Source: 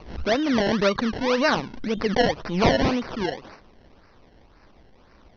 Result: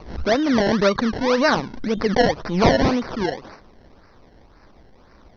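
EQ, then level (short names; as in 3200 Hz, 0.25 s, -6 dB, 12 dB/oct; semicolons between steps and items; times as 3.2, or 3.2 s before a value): bell 2800 Hz -6 dB 0.54 oct; +3.5 dB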